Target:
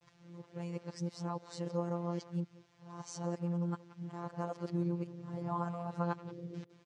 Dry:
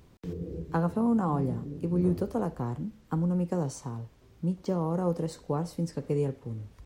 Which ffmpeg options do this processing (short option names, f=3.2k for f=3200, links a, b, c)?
-filter_complex "[0:a]areverse,lowshelf=f=490:g=-8.5,acompressor=threshold=-34dB:ratio=1.5,asplit=2[a][b];[b]adelay=180,highpass=300,lowpass=3.4k,asoftclip=type=hard:threshold=-34.5dB,volume=-14dB[c];[a][c]amix=inputs=2:normalize=0,afftfilt=real='hypot(re,im)*cos(PI*b)':imag='0':win_size=1024:overlap=0.75,highpass=100,equalizer=f=130:t=q:w=4:g=8,equalizer=f=240:t=q:w=4:g=-10,equalizer=f=450:t=q:w=4:g=-4,lowpass=f=6.9k:w=0.5412,lowpass=f=6.9k:w=1.3066,volume=2dB"